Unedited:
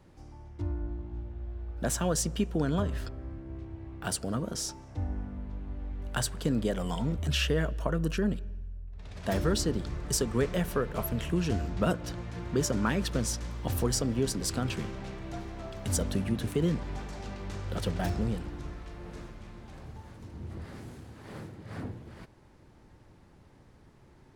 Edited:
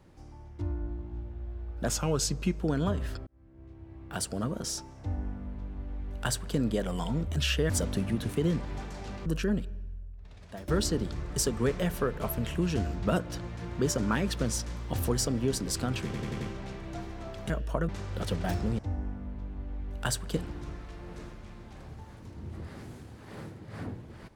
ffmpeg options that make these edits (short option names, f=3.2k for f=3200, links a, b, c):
-filter_complex "[0:a]asplit=15[a][b][c][d][e][f][g][h][i][j][k][l][m][n][o];[a]atrim=end=1.884[p];[b]atrim=start=1.88:end=2.52,asetpts=PTS-STARTPTS,asetrate=38808,aresample=44100[q];[c]atrim=start=2.516:end=3.18,asetpts=PTS-STARTPTS,afade=t=out:st=0.66:d=0.004:c=hsin[r];[d]atrim=start=3.18:end=7.612,asetpts=PTS-STARTPTS,afade=t=in:d=1.07[s];[e]atrim=start=15.878:end=17.442[t];[f]atrim=start=7.998:end=9.42,asetpts=PTS-STARTPTS,afade=t=out:st=0.692:d=0.73:silence=0.1[u];[g]atrim=start=9.42:end=14.882,asetpts=PTS-STARTPTS,afade=t=in:d=0.004:c=hsin:silence=0.1[v];[h]atrim=start=14.788:end=14.882[w];[i]atrim=start=14.788:end=14.882[x];[j]atrim=start=14.788:end=14.882[y];[k]atrim=start=14.788:end=15.882[z];[l]atrim=start=7.608:end=8.002[aa];[m]atrim=start=17.438:end=18.342[ab];[n]atrim=start=4.898:end=6.482[ac];[o]atrim=start=18.338[ad];[p][q]acrossfade=d=0.004:c1=hsin:c2=hsin[ae];[r][s]concat=n=2:v=0:a=1[af];[ae][af]acrossfade=d=0.004:c1=hsin:c2=hsin[ag];[ag][t]acrossfade=d=0.004:c1=hsin:c2=hsin[ah];[u][v]concat=n=2:v=0:a=1[ai];[ah][ai]acrossfade=d=0.004:c1=hsin:c2=hsin[aj];[aj][w]acrossfade=d=0.004:c1=hsin:c2=hsin[ak];[ak][x]acrossfade=d=0.004:c1=hsin:c2=hsin[al];[al][y]acrossfade=d=0.004:c1=hsin:c2=hsin[am];[am][z]acrossfade=d=0.004:c1=hsin:c2=hsin[an];[an][aa]acrossfade=d=0.004:c1=hsin:c2=hsin[ao];[ao][ab]acrossfade=d=0.004:c1=hsin:c2=hsin[ap];[ap][ac]acrossfade=d=0.004:c1=hsin:c2=hsin[aq];[aq][ad]acrossfade=d=0.004:c1=hsin:c2=hsin"